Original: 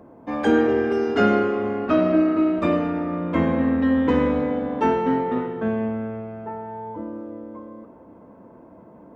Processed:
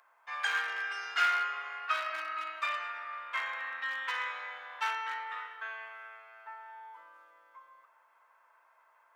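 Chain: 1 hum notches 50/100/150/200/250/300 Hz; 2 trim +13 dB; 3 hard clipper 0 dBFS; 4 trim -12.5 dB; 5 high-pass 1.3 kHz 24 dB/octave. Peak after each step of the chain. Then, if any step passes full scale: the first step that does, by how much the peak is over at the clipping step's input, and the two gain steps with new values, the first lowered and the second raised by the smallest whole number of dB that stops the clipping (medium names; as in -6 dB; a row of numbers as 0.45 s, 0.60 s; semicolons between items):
-6.0 dBFS, +7.0 dBFS, 0.0 dBFS, -12.5 dBFS, -15.5 dBFS; step 2, 7.0 dB; step 2 +6 dB, step 4 -5.5 dB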